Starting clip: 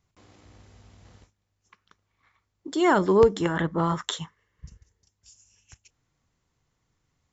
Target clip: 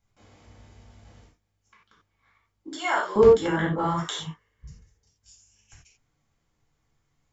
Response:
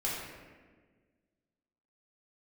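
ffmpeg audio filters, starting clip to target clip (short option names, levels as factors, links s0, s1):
-filter_complex "[0:a]asettb=1/sr,asplit=3[s0][s1][s2];[s0]atrim=end=2.724[s3];[s1]atrim=start=2.72:end=3.16,asetpts=PTS-STARTPTS,afade=t=in:d=0.004:c=qsin,afade=t=out:st=0.436:d=0.004:c=qsin,highpass=900[s4];[s2]atrim=start=3.156[s5];[s3][s4]acrossfade=d=0.004:c1=hsin:c2=qsin[s6];[s6][s5]acrossfade=d=0.004:c1=qsin:c2=hsin[s7];[1:a]atrim=start_sample=2205,atrim=end_sample=4410[s8];[s7][s8]afir=irnorm=-1:irlink=0,volume=0.668"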